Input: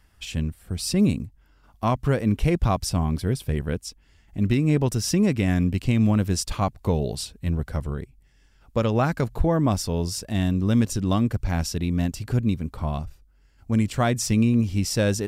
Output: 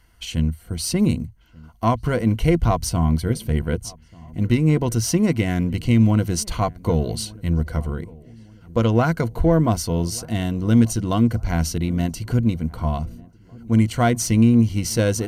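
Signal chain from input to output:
in parallel at −10 dB: asymmetric clip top −31 dBFS, bottom −13.5 dBFS
on the sum: EQ curve with evenly spaced ripples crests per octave 1.9, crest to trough 9 dB
feedback echo with a low-pass in the loop 1,189 ms, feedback 49%, low-pass 1,200 Hz, level −23.5 dB

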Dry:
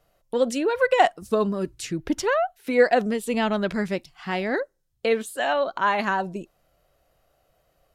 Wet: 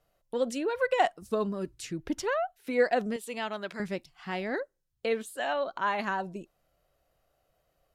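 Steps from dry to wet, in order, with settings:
0:03.16–0:03.80: high-pass filter 670 Hz 6 dB per octave
level −7 dB

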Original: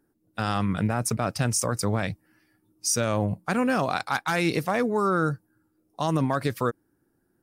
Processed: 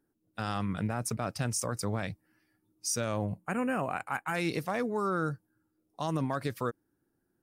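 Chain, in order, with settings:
gain on a spectral selection 0:03.40–0:04.35, 3,100–6,600 Hz −21 dB
level −7 dB

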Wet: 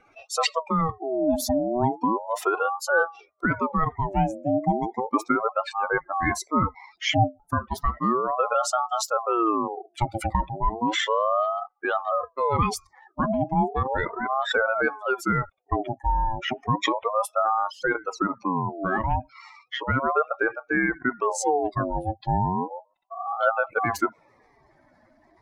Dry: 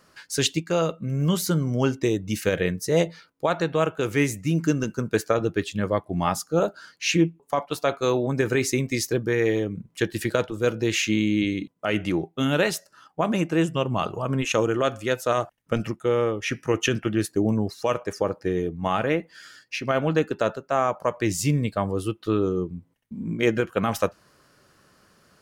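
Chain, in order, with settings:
expanding power law on the bin magnitudes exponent 2.3
ring modulator whose carrier an LFO sweeps 720 Hz, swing 40%, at 0.34 Hz
level +2.5 dB

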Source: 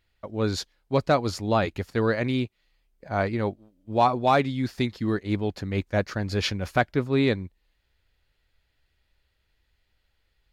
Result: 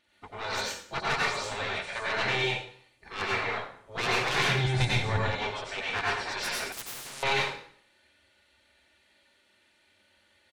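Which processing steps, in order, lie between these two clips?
hearing-aid frequency compression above 3,800 Hz 1.5 to 1
parametric band 110 Hz −9.5 dB 0.67 octaves
comb filter 3.4 ms, depth 70%
0:01.15–0:02.02: downward compressor 6 to 1, threshold −23 dBFS, peak gain reduction 7.5 dB
soft clipping −22.5 dBFS, distortion −8 dB
gate on every frequency bin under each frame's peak −15 dB weak
0:04.49–0:05.21: bass and treble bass +14 dB, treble +2 dB
dense smooth reverb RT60 0.57 s, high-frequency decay 0.9×, pre-delay 80 ms, DRR −5 dB
0:06.72–0:07.23: every bin compressed towards the loudest bin 10 to 1
level +4 dB

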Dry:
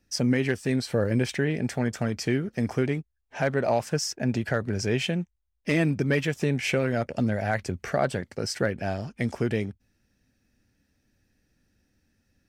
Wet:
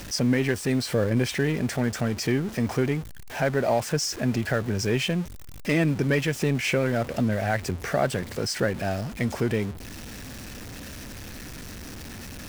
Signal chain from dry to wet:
converter with a step at zero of −33 dBFS

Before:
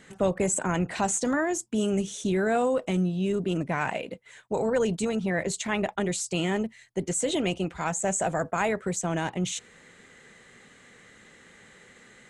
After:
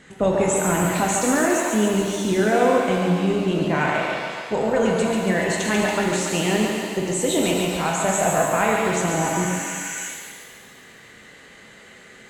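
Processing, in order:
high-shelf EQ 7,600 Hz −6 dB
feedback echo with a high-pass in the loop 141 ms, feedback 67%, high-pass 360 Hz, level −4.5 dB
healed spectral selection 0:09.19–0:10.06, 1,400–8,100 Hz before
reverb with rising layers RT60 1.4 s, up +7 semitones, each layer −8 dB, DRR 1 dB
level +3.5 dB

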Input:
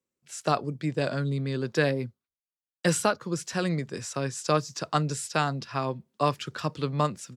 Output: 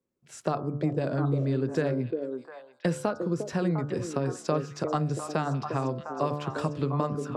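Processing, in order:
tilt shelving filter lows +7.5 dB, about 1,500 Hz
hum removal 73.46 Hz, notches 22
downward compressor 2.5 to 1, threshold −27 dBFS, peak gain reduction 10 dB
on a send: echo through a band-pass that steps 352 ms, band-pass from 380 Hz, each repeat 1.4 octaves, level −2 dB

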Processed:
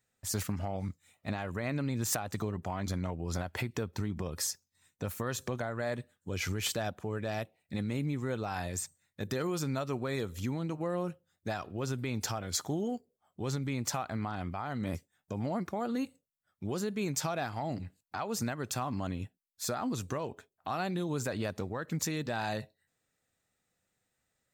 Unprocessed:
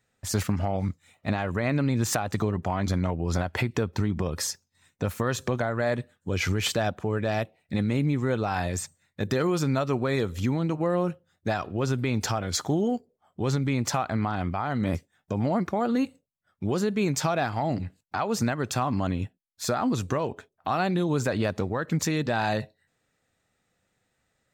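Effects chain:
high-shelf EQ 7,000 Hz +10.5 dB
level −8.5 dB

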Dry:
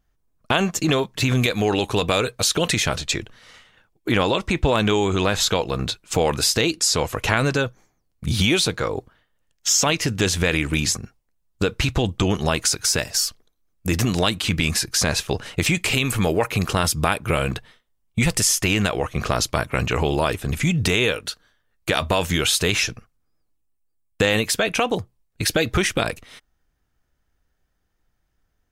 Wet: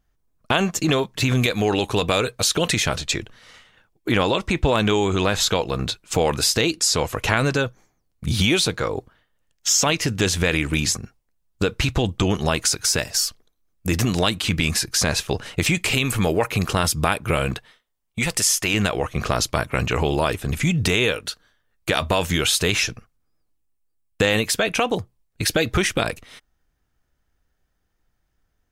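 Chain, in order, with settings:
0:17.54–0:18.74: low-shelf EQ 270 Hz −9 dB

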